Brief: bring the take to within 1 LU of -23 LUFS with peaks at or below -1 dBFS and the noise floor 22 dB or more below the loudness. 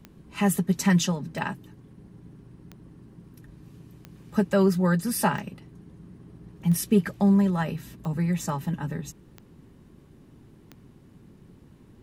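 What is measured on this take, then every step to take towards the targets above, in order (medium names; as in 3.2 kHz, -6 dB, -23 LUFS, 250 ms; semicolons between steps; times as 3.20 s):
clicks found 9; loudness -25.0 LUFS; peak level -9.0 dBFS; loudness target -23.0 LUFS
-> de-click; trim +2 dB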